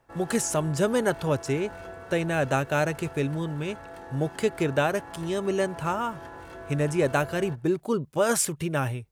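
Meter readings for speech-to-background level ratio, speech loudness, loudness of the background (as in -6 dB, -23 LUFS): 15.5 dB, -27.0 LUFS, -42.5 LUFS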